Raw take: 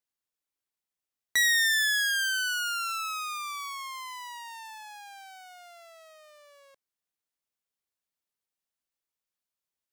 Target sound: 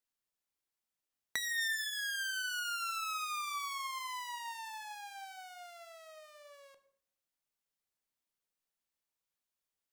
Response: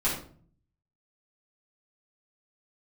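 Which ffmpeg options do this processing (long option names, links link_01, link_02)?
-filter_complex "[0:a]asplit=2[link_01][link_02];[1:a]atrim=start_sample=2205,asetrate=33516,aresample=44100,adelay=14[link_03];[link_02][link_03]afir=irnorm=-1:irlink=0,volume=-20.5dB[link_04];[link_01][link_04]amix=inputs=2:normalize=0,acompressor=threshold=-33dB:ratio=12,asettb=1/sr,asplit=3[link_05][link_06][link_07];[link_05]atrim=end=1.384[link_08];[link_06]atrim=start=1.38:end=1.99,asetpts=PTS-STARTPTS,afade=type=in:duration=0.004:curve=qsin,afade=type=out:start_time=0.606:duration=0.004:curve=qsin,aecho=1:1:4.4:0.59,atrim=end_sample=26901[link_09];[link_07]atrim=start=1.986[link_10];[link_08][link_09]acrossfade=duration=0.004:curve1=hsin:curve2=qsin[link_11];[link_11][link_10]acrossfade=duration=0.004:curve1=qsin:curve2=hsin,volume=-1.5dB"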